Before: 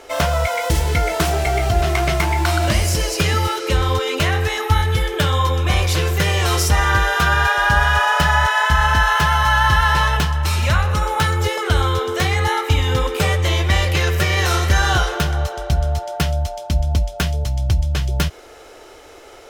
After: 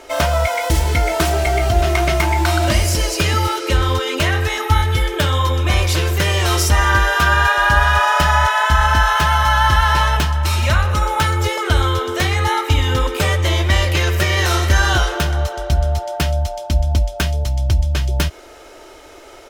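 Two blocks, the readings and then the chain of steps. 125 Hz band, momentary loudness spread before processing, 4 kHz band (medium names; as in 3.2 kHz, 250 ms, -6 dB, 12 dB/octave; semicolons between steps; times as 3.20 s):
+1.0 dB, 6 LU, +1.5 dB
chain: comb 3.2 ms, depth 35%; trim +1 dB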